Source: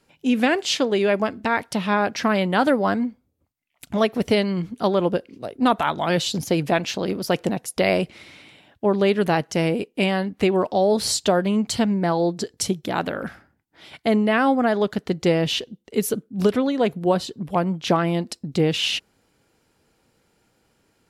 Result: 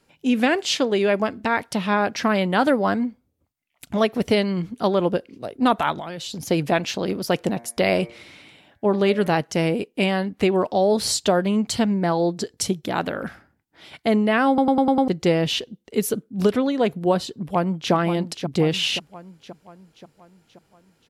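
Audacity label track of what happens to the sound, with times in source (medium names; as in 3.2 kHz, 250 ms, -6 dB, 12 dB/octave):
5.920000	6.460000	compression 12:1, threshold -28 dBFS
7.510000	9.320000	de-hum 116.9 Hz, notches 20
14.480000	14.480000	stutter in place 0.10 s, 6 plays
17.310000	17.930000	echo throw 530 ms, feedback 55%, level -9 dB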